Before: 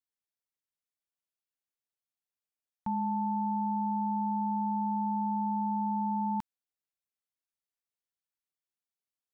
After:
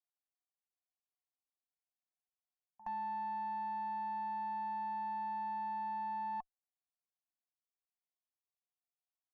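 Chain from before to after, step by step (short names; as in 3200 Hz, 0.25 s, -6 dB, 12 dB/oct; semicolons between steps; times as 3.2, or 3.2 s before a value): vocal tract filter a; pre-echo 69 ms -17 dB; added harmonics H 2 -17 dB, 3 -29 dB, 4 -42 dB, 7 -37 dB, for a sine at -38 dBFS; gain +5.5 dB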